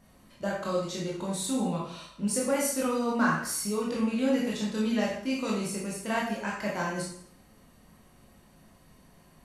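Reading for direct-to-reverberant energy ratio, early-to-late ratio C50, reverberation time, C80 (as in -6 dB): -5.0 dB, 2.5 dB, 0.60 s, 6.0 dB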